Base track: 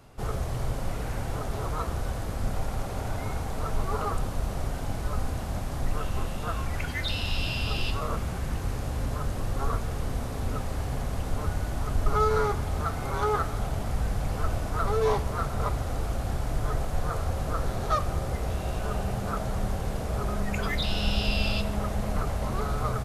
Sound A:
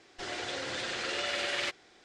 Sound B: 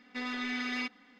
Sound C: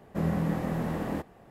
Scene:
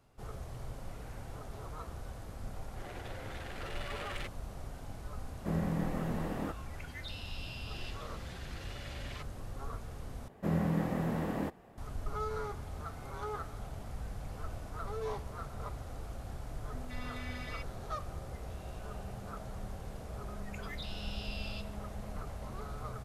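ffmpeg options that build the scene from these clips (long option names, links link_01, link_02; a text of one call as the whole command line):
ffmpeg -i bed.wav -i cue0.wav -i cue1.wav -i cue2.wav -filter_complex "[1:a]asplit=2[link_01][link_02];[3:a]asplit=2[link_03][link_04];[0:a]volume=-13.5dB[link_05];[link_01]adynamicsmooth=sensitivity=5:basefreq=1100[link_06];[2:a]acrossover=split=560[link_07][link_08];[link_08]adelay=170[link_09];[link_07][link_09]amix=inputs=2:normalize=0[link_10];[link_05]asplit=2[link_11][link_12];[link_11]atrim=end=10.284[link_13];[link_04]atrim=end=1.5,asetpts=PTS-STARTPTS,volume=-3dB[link_14];[link_12]atrim=start=11.776[link_15];[link_06]atrim=end=2.04,asetpts=PTS-STARTPTS,volume=-9.5dB,afade=type=in:duration=0.004:curve=hsin,afade=type=out:start_time=2.036:duration=0.004:curve=hsin,adelay=2570[link_16];[link_03]atrim=end=1.5,asetpts=PTS-STARTPTS,volume=-5.5dB,afade=type=in:duration=0.004:curve=hsin,afade=type=out:start_time=1.496:duration=0.004:curve=hsin,adelay=5300[link_17];[link_02]atrim=end=2.04,asetpts=PTS-STARTPTS,volume=-16.5dB,afade=type=in:duration=0.004:curve=hsin,afade=type=out:start_time=2.036:duration=0.004:curve=hsin,adelay=7520[link_18];[link_10]atrim=end=1.19,asetpts=PTS-STARTPTS,volume=-10.5dB,afade=type=in:duration=0.004:curve=hsin,afade=type=out:start_time=1.186:duration=0.004:curve=hsin,adelay=16580[link_19];[link_13][link_14]acrossfade=duration=0.004:curve1=hsin:curve2=hsin[link_20];[link_20][link_15]acrossfade=duration=0.004:curve1=hsin:curve2=hsin[link_21];[link_21][link_16][link_17][link_18][link_19]amix=inputs=5:normalize=0" out.wav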